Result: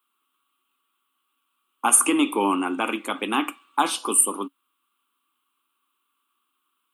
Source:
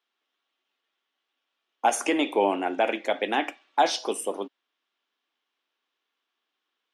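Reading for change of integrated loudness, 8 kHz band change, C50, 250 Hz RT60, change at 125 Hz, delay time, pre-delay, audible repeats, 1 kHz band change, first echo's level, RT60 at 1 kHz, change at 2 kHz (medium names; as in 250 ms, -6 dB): +4.5 dB, +15.0 dB, no reverb, no reverb, no reading, no echo, no reverb, no echo, +0.5 dB, no echo, no reverb, +1.5 dB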